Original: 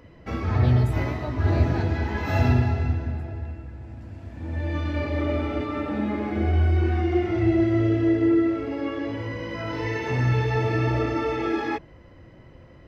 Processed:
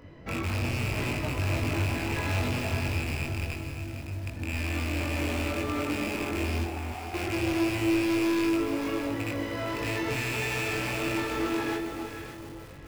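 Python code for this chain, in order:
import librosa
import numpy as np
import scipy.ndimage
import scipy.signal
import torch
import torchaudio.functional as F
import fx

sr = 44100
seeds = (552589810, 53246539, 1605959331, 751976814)

p1 = fx.rattle_buzz(x, sr, strikes_db=-29.0, level_db=-13.0)
p2 = fx.tilt_shelf(p1, sr, db=-5.0, hz=970.0, at=(10.16, 10.73))
p3 = (np.mod(10.0 ** (23.5 / 20.0) * p2 + 1.0, 2.0) - 1.0) / 10.0 ** (23.5 / 20.0)
p4 = p2 + F.gain(torch.from_numpy(p3), -6.5).numpy()
p5 = fx.ladder_bandpass(p4, sr, hz=850.0, resonance_pct=75, at=(6.63, 7.13), fade=0.02)
p6 = 10.0 ** (-24.0 / 20.0) * np.tanh(p5 / 10.0 ** (-24.0 / 20.0))
p7 = fx.doubler(p6, sr, ms=21.0, db=-3.5)
p8 = fx.echo_alternate(p7, sr, ms=282, hz=890.0, feedback_pct=55, wet_db=-5.0)
p9 = fx.echo_crushed(p8, sr, ms=458, feedback_pct=35, bits=6, wet_db=-10.5)
y = F.gain(torch.from_numpy(p9), -4.5).numpy()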